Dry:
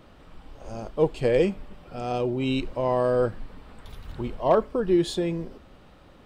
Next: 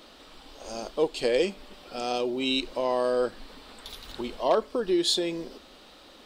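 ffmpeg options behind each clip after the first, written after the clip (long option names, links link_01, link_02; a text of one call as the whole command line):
ffmpeg -i in.wav -filter_complex "[0:a]equalizer=frequency=125:width_type=o:width=1:gain=-10,equalizer=frequency=250:width_type=o:width=1:gain=5,equalizer=frequency=4000:width_type=o:width=1:gain=9,asplit=2[link_01][link_02];[link_02]acompressor=threshold=-28dB:ratio=6,volume=1.5dB[link_03];[link_01][link_03]amix=inputs=2:normalize=0,bass=frequency=250:gain=-10,treble=frequency=4000:gain=8,volume=-5.5dB" out.wav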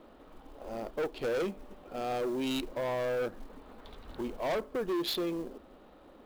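ffmpeg -i in.wav -af "adynamicsmooth=sensitivity=2:basefreq=1200,asoftclip=type=tanh:threshold=-28dB,acrusher=bits=6:mode=log:mix=0:aa=0.000001" out.wav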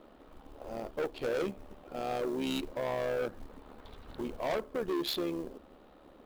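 ffmpeg -i in.wav -af "tremolo=f=73:d=0.571,volume=1.5dB" out.wav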